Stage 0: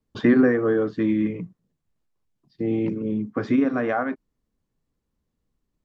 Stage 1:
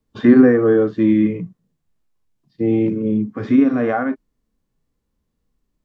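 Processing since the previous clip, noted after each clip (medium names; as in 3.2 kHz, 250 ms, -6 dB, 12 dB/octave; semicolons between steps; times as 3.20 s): harmonic-percussive split percussive -12 dB; trim +7.5 dB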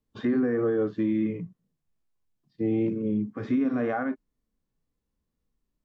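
peak limiter -10 dBFS, peak gain reduction 8.5 dB; wow and flutter 29 cents; trim -8 dB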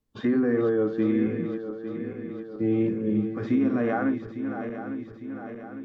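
backward echo that repeats 427 ms, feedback 74%, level -9 dB; trim +1.5 dB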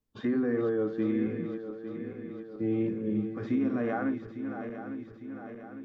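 feedback echo behind a high-pass 211 ms, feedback 83%, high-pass 2.4 kHz, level -21.5 dB; trim -5 dB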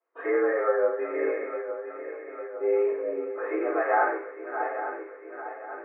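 tremolo saw down 0.88 Hz, depth 40%; reverberation RT60 0.45 s, pre-delay 3 ms, DRR -9 dB; mistuned SSB +67 Hz 450–2200 Hz; trim -3 dB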